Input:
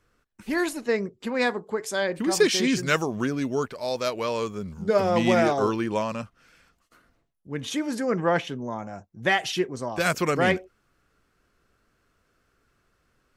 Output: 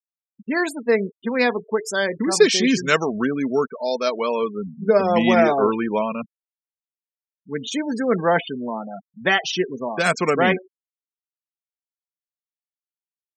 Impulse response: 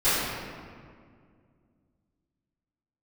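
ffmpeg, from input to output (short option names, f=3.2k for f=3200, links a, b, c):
-af "highpass=170,aecho=1:1:4.5:0.31,afftfilt=real='re*gte(hypot(re,im),0.0282)':imag='im*gte(hypot(re,im),0.0282)':win_size=1024:overlap=0.75,volume=4.5dB"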